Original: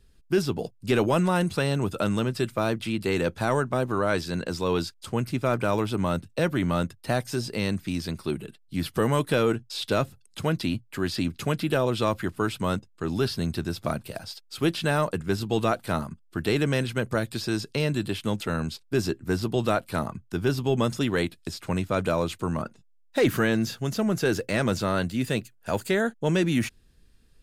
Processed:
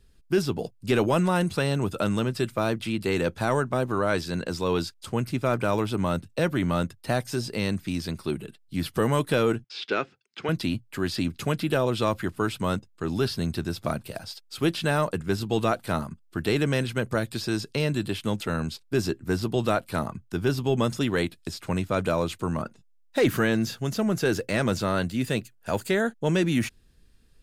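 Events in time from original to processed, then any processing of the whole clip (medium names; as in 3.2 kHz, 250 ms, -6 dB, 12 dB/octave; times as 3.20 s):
9.64–10.49 s: cabinet simulation 320–5000 Hz, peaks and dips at 390 Hz +4 dB, 600 Hz -8 dB, 1 kHz -4 dB, 1.5 kHz +4 dB, 2.3 kHz +5 dB, 4 kHz -6 dB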